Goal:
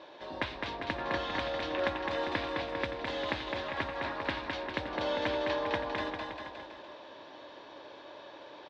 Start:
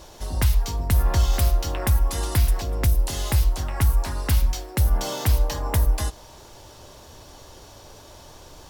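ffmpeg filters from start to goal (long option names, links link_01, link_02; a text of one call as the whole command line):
ffmpeg -i in.wav -af "highpass=250,equalizer=frequency=310:width_type=q:width=4:gain=9,equalizer=frequency=570:width_type=q:width=4:gain=9,equalizer=frequency=990:width_type=q:width=4:gain=7,equalizer=frequency=1700:width_type=q:width=4:gain=9,equalizer=frequency=2400:width_type=q:width=4:gain=6,equalizer=frequency=3700:width_type=q:width=4:gain=7,lowpass=frequency=3800:width=0.5412,lowpass=frequency=3800:width=1.3066,aecho=1:1:210|399|569.1|722.2|860:0.631|0.398|0.251|0.158|0.1,volume=-8.5dB" out.wav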